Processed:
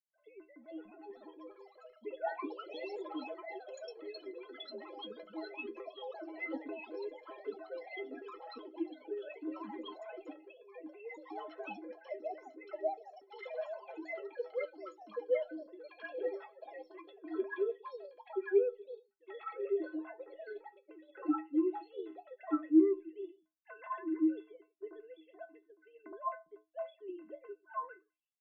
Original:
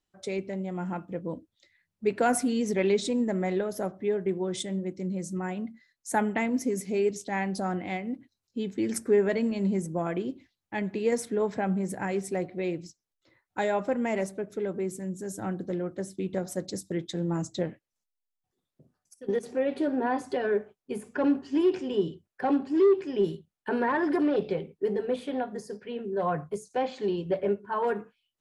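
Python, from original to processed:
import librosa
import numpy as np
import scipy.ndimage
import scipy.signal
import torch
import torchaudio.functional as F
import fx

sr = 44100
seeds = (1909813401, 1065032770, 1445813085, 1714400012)

y = fx.sine_speech(x, sr)
y = fx.stiff_resonator(y, sr, f0_hz=310.0, decay_s=0.27, stiffness=0.03)
y = fx.echo_pitch(y, sr, ms=491, semitones=4, count=3, db_per_echo=-3.0)
y = y * librosa.db_to_amplitude(5.0)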